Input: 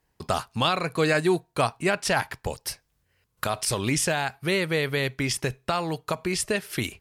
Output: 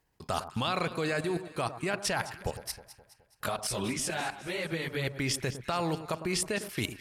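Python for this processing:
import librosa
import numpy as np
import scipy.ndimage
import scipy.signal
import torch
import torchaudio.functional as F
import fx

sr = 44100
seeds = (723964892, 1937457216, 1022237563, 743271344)

y = fx.level_steps(x, sr, step_db=15)
y = fx.chorus_voices(y, sr, voices=4, hz=1.5, base_ms=18, depth_ms=3.0, mix_pct=65, at=(2.64, 5.07))
y = fx.echo_alternate(y, sr, ms=105, hz=1300.0, feedback_pct=68, wet_db=-11.5)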